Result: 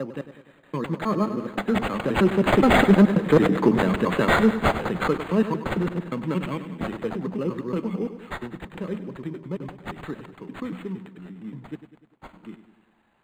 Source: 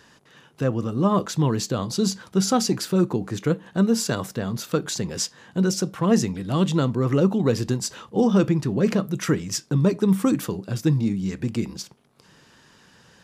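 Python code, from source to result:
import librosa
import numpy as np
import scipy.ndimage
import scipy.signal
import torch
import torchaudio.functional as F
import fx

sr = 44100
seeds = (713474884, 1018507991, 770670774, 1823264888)

p1 = fx.block_reorder(x, sr, ms=110.0, group=7)
p2 = fx.doppler_pass(p1, sr, speed_mps=16, closest_m=8.8, pass_at_s=3.42)
p3 = scipy.signal.sosfilt(scipy.signal.butter(4, 160.0, 'highpass', fs=sr, output='sos'), p2)
p4 = fx.high_shelf(p3, sr, hz=3000.0, db=11.0)
p5 = fx.notch_comb(p4, sr, f0_hz=720.0)
p6 = p5 + fx.echo_feedback(p5, sr, ms=99, feedback_pct=56, wet_db=-12.0, dry=0)
p7 = fx.dynamic_eq(p6, sr, hz=3900.0, q=1.5, threshold_db=-43.0, ratio=4.0, max_db=-4)
p8 = fx.fold_sine(p7, sr, drive_db=9, ceiling_db=-7.0)
p9 = p7 + F.gain(torch.from_numpy(p8), -6.0).numpy()
y = np.interp(np.arange(len(p9)), np.arange(len(p9))[::8], p9[::8])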